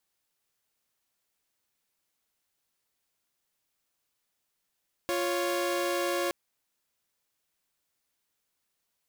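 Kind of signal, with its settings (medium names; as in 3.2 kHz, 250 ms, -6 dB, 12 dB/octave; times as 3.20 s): chord F4/C#5 saw, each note -27.5 dBFS 1.22 s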